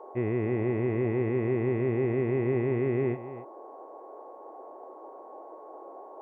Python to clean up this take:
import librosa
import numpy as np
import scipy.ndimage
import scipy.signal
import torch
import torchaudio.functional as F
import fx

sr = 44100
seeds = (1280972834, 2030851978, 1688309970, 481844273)

y = fx.notch(x, sr, hz=1100.0, q=30.0)
y = fx.noise_reduce(y, sr, print_start_s=3.96, print_end_s=4.46, reduce_db=29.0)
y = fx.fix_echo_inverse(y, sr, delay_ms=277, level_db=-14.0)